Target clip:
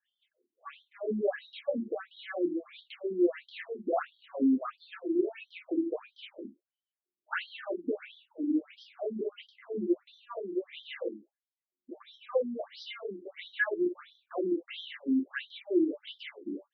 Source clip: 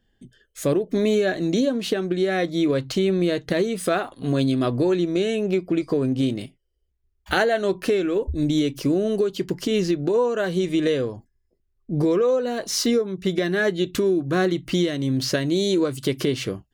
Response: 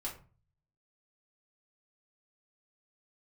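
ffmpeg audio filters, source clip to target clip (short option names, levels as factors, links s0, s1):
-filter_complex "[0:a]highshelf=f=4700:t=q:w=1.5:g=-13,acrossover=split=3000[s0][s1];[s1]acompressor=threshold=0.00562:ratio=4:attack=1:release=60[s2];[s0][s2]amix=inputs=2:normalize=0[s3];[1:a]atrim=start_sample=2205,atrim=end_sample=3969[s4];[s3][s4]afir=irnorm=-1:irlink=0,afftfilt=real='re*between(b*sr/1024,260*pow(4400/260,0.5+0.5*sin(2*PI*1.5*pts/sr))/1.41,260*pow(4400/260,0.5+0.5*sin(2*PI*1.5*pts/sr))*1.41)':imag='im*between(b*sr/1024,260*pow(4400/260,0.5+0.5*sin(2*PI*1.5*pts/sr))/1.41,260*pow(4400/260,0.5+0.5*sin(2*PI*1.5*pts/sr))*1.41)':win_size=1024:overlap=0.75,volume=0.562"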